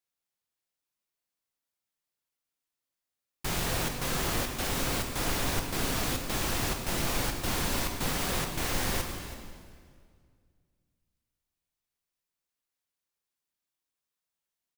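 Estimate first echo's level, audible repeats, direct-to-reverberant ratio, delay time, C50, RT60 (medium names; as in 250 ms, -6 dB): -16.0 dB, 1, 3.0 dB, 327 ms, 5.0 dB, 2.0 s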